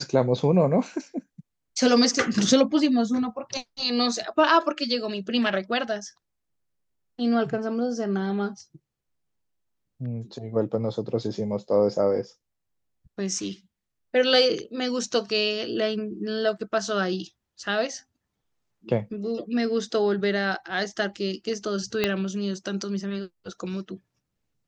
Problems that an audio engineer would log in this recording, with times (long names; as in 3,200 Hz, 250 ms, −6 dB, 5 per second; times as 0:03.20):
0:22.04: click −8 dBFS